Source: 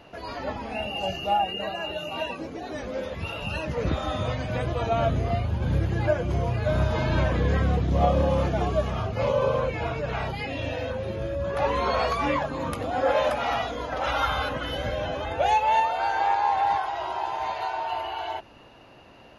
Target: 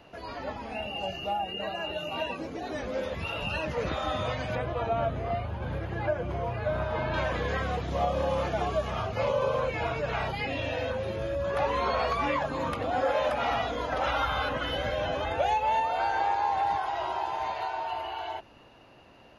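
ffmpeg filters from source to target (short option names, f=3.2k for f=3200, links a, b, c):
-filter_complex "[0:a]acrossover=split=490|4600[a][b][c];[a]acompressor=threshold=-35dB:ratio=4[d];[b]acompressor=threshold=-27dB:ratio=4[e];[c]acompressor=threshold=-56dB:ratio=4[f];[d][e][f]amix=inputs=3:normalize=0,asettb=1/sr,asplit=3[g][h][i];[g]atrim=end=4.554[j];[h]atrim=start=4.55:end=7.14,asetpts=PTS-STARTPTS,afade=t=in:d=0.004:c=qsin,afade=t=out:st=2.586:d=0.004:c=qsin,equalizer=f=7.5k:t=o:w=2.1:g=-14[k];[i]atrim=start=7.136[l];[j][k]acrossfade=d=0.004:c1=hsin:c2=qsin[m];[m][l]acrossfade=d=0.004:c1=qsin:c2=hsin,dynaudnorm=f=140:g=31:m=4.5dB,volume=-3.5dB"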